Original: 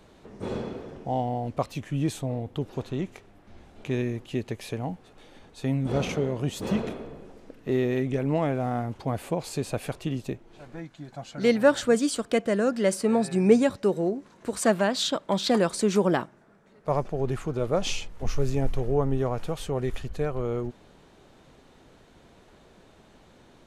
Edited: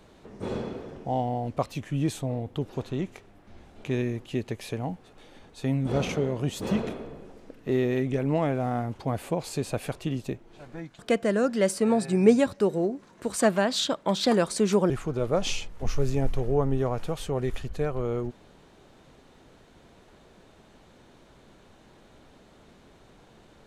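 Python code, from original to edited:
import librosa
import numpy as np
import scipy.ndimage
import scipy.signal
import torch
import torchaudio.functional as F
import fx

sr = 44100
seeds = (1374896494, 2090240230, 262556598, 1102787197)

y = fx.edit(x, sr, fx.cut(start_s=10.99, length_s=1.23),
    fx.cut(start_s=16.13, length_s=1.17), tone=tone)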